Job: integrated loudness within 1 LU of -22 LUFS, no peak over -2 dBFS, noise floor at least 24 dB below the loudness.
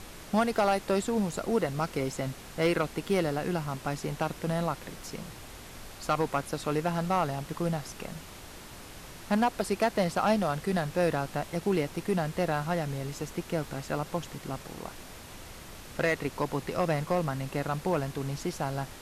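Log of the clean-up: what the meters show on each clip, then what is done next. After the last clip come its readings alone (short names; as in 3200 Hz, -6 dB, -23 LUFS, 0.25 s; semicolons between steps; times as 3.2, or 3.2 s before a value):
clipped 0.3%; flat tops at -18.0 dBFS; noise floor -46 dBFS; noise floor target -55 dBFS; loudness -30.5 LUFS; peak -18.0 dBFS; loudness target -22.0 LUFS
-> clip repair -18 dBFS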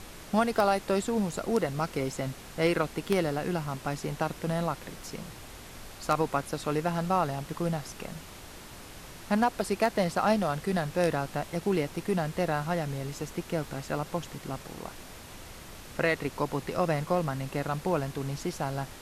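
clipped 0.0%; noise floor -46 dBFS; noise floor target -55 dBFS
-> noise print and reduce 9 dB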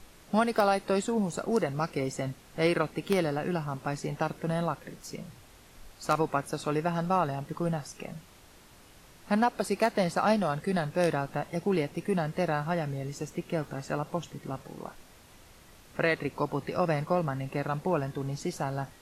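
noise floor -55 dBFS; loudness -30.5 LUFS; peak -9.0 dBFS; loudness target -22.0 LUFS
-> gain +8.5 dB; limiter -2 dBFS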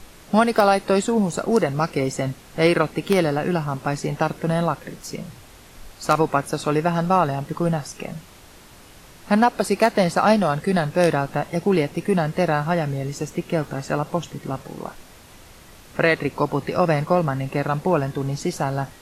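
loudness -22.0 LUFS; peak -2.0 dBFS; noise floor -46 dBFS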